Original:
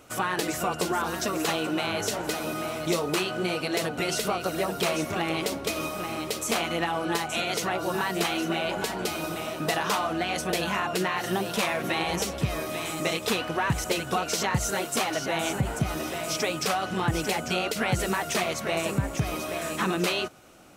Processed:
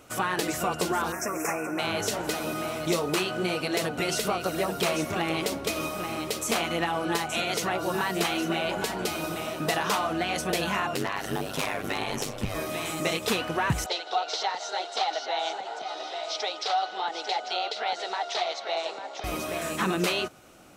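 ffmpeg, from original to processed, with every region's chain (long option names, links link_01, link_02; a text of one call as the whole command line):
ffmpeg -i in.wav -filter_complex "[0:a]asettb=1/sr,asplit=3[link_01][link_02][link_03];[link_01]atrim=end=1.124[link_04];[link_02]atrim=start=1.12:end=1.79,asetpts=PTS-STARTPTS,afade=type=in:duration=0.004:curve=qsin,afade=type=out:start_time=0.666:duration=0.004:curve=qsin,asuperstop=centerf=3700:order=12:qfactor=1.3,lowshelf=frequency=350:gain=-7[link_05];[link_03]atrim=start=1.786[link_06];[link_04][link_05]acrossfade=duration=0.004:curve1=hsin:curve2=qsin[link_07];[link_07][link_06]acrossfade=duration=0.004:curve1=qsin:curve2=hsin,asettb=1/sr,asplit=3[link_08][link_09][link_10];[link_08]atrim=end=10.944[link_11];[link_09]atrim=start=10.94:end=12.55,asetpts=PTS-STARTPTS,afade=type=in:duration=0.004:curve=qsin,afade=type=out:start_time=1.606:duration=0.004:curve=qsin,aeval=exprs='val(0)*sin(2*PI*50*n/s)':channel_layout=same,aeval=exprs='0.106*(abs(mod(val(0)/0.106+3,4)-2)-1)':channel_layout=same[link_12];[link_10]atrim=start=12.546[link_13];[link_11][link_12]acrossfade=duration=0.004:curve1=hsin:curve2=qsin[link_14];[link_14][link_13]acrossfade=duration=0.004:curve1=qsin:curve2=hsin,asettb=1/sr,asplit=3[link_15][link_16][link_17];[link_15]atrim=end=13.864[link_18];[link_16]atrim=start=13.86:end=19.24,asetpts=PTS-STARTPTS,afade=type=in:duration=0.004:curve=qsin,afade=type=out:start_time=5.376:duration=0.004:curve=qsin,highpass=frequency=500:width=0.5412,highpass=frequency=500:width=1.3066,equalizer=frequency=550:width_type=q:width=4:gain=-5,equalizer=frequency=790:width_type=q:width=4:gain=7,equalizer=frequency=1100:width_type=q:width=4:gain=-8,equalizer=frequency=1700:width_type=q:width=4:gain=-7,equalizer=frequency=2500:width_type=q:width=4:gain=-8,equalizer=frequency=3900:width_type=q:width=4:gain=7,lowpass=frequency=5000:width=0.5412,lowpass=frequency=5000:width=1.3066,aecho=1:1:157:0.112,atrim=end_sample=237258[link_19];[link_17]atrim=start=19.236[link_20];[link_18][link_19]acrossfade=duration=0.004:curve1=hsin:curve2=qsin[link_21];[link_21][link_20]acrossfade=duration=0.004:curve1=qsin:curve2=hsin" out.wav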